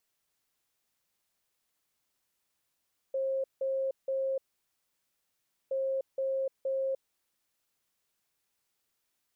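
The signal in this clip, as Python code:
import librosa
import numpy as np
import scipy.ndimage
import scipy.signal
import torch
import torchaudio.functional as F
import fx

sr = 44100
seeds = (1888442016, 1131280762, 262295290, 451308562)

y = fx.beep_pattern(sr, wave='sine', hz=535.0, on_s=0.3, off_s=0.17, beeps=3, pause_s=1.33, groups=2, level_db=-28.0)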